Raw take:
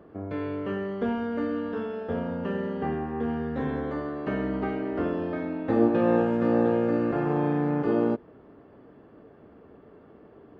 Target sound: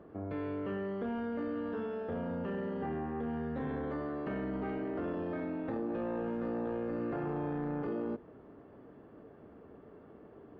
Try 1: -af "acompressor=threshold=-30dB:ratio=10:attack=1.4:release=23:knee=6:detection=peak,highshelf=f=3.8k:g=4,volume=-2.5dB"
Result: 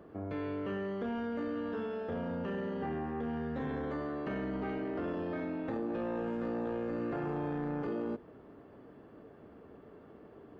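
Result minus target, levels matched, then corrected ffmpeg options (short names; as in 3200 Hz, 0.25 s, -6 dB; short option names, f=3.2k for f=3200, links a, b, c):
4000 Hz band +4.5 dB
-af "acompressor=threshold=-30dB:ratio=10:attack=1.4:release=23:knee=6:detection=peak,highshelf=f=3.8k:g=-7.5,volume=-2.5dB"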